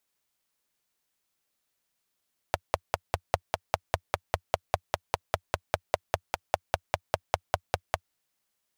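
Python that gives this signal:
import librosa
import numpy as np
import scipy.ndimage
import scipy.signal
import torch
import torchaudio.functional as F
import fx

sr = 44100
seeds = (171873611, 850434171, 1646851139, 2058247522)

y = fx.engine_single(sr, seeds[0], length_s=5.58, rpm=600, resonances_hz=(89.0, 660.0))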